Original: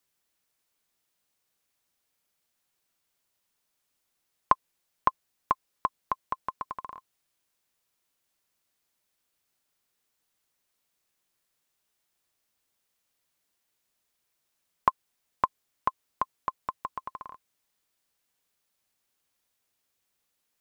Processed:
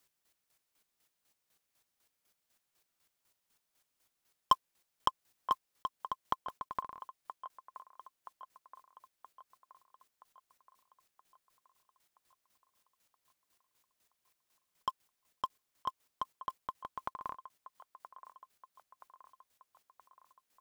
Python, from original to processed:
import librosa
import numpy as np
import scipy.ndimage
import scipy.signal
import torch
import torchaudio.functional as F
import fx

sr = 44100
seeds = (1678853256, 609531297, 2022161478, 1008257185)

p1 = fx.block_float(x, sr, bits=7)
p2 = 10.0 ** (-19.5 / 20.0) * np.tanh(p1 / 10.0 ** (-19.5 / 20.0))
p3 = fx.chopper(p2, sr, hz=4.0, depth_pct=65, duty_pct=30)
p4 = p3 + fx.echo_wet_bandpass(p3, sr, ms=974, feedback_pct=55, hz=980.0, wet_db=-13, dry=0)
p5 = fx.band_squash(p4, sr, depth_pct=40, at=(5.08, 5.52))
y = F.gain(torch.from_numpy(p5), 4.0).numpy()